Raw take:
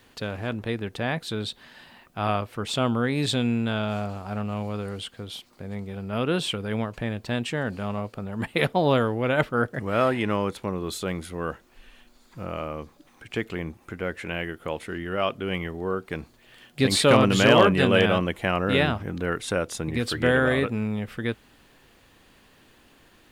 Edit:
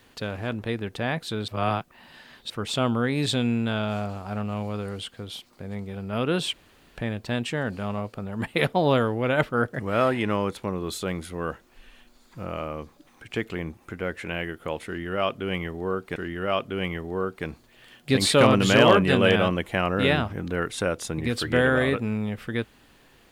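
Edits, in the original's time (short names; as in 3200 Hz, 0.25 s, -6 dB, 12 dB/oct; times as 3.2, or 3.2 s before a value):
1.48–2.5 reverse
6.53–6.97 room tone
14.86–16.16 loop, 2 plays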